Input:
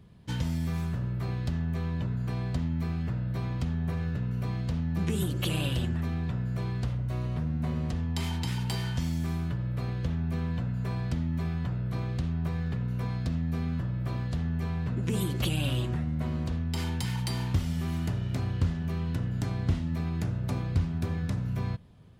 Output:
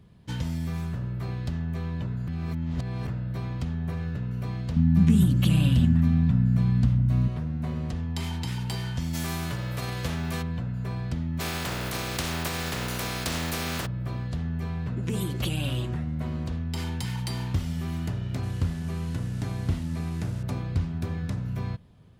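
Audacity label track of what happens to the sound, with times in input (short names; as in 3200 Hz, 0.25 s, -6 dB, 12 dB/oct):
2.280000	3.070000	reverse
4.760000	7.280000	resonant low shelf 300 Hz +7.5 dB, Q 3
9.130000	10.410000	spectral whitening exponent 0.6
11.390000	13.850000	spectral contrast lowered exponent 0.4
18.430000	20.430000	delta modulation 64 kbps, step -43.5 dBFS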